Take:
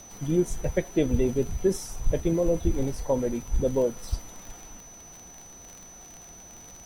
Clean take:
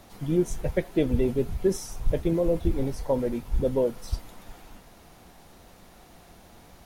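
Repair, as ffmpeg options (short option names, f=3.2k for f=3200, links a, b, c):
-af "adeclick=t=4,bandreject=f=6k:w=30"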